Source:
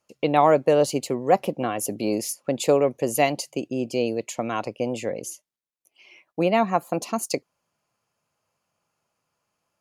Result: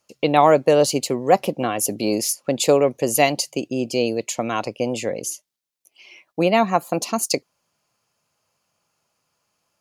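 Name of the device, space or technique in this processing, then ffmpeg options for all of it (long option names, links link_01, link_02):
presence and air boost: -af "equalizer=frequency=4700:width_type=o:width=1.4:gain=5,highshelf=frequency=9500:gain=5,volume=3dB"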